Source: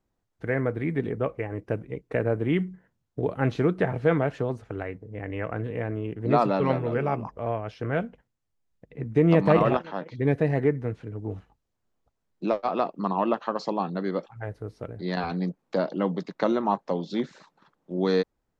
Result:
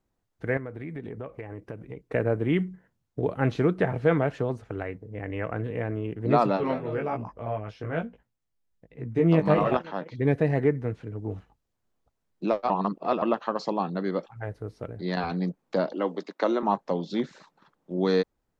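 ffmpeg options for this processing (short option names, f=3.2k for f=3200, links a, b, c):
-filter_complex "[0:a]asettb=1/sr,asplit=3[a][b][c];[a]atrim=end=0.574[d];[b]atrim=start=0.57:end=2.1,asetpts=PTS-STARTPTS,afade=t=in:d=0.004:c=qsin,afade=t=out:st=1.526:d=0.004:c=qsin,acompressor=threshold=-34dB:ratio=4:attack=3.2:release=140:knee=1:detection=peak[e];[c]atrim=start=2.096[f];[d][e]acrossfade=d=0.004:c1=hsin:c2=qsin[g];[g][f]acrossfade=d=0.004:c1=qsin:c2=hsin,asplit=3[h][i][j];[h]afade=t=out:st=6.56:d=0.02[k];[i]flanger=delay=17:depth=2.8:speed=1.1,afade=t=in:st=6.56:d=0.02,afade=t=out:st=9.71:d=0.02[l];[j]afade=t=in:st=9.71:d=0.02[m];[k][l][m]amix=inputs=3:normalize=0,asettb=1/sr,asplit=3[n][o][p];[n]atrim=end=15.924[q];[o]atrim=start=15.92:end=16.63,asetpts=PTS-STARTPTS,afade=t=in:d=0.004:c=qsin,afade=t=out:st=0.706:d=0.004:c=qsin,highpass=f=260:w=0.5412,highpass=f=260:w=1.3066[r];[p]atrim=start=16.626[s];[q][r]acrossfade=d=0.004:c1=hsin:c2=qsin[t];[t][s]acrossfade=d=0.004:c1=qsin:c2=hsin,asplit=3[u][v][w];[u]atrim=end=12.702[x];[v]atrim=start=12.698:end=13.222,asetpts=PTS-STARTPTS,areverse[y];[w]atrim=start=13.218[z];[x][y]acrossfade=d=0.004:c1=hsin:c2=hsin[aa];[aa][z]acrossfade=d=0.004:c1=hsin:c2=hsin"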